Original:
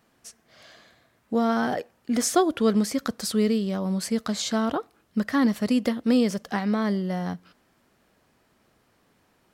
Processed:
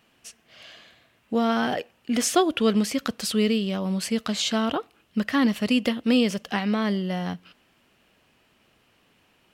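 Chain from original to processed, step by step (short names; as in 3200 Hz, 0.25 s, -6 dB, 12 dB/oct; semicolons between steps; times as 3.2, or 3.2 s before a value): bell 2800 Hz +12 dB 0.6 oct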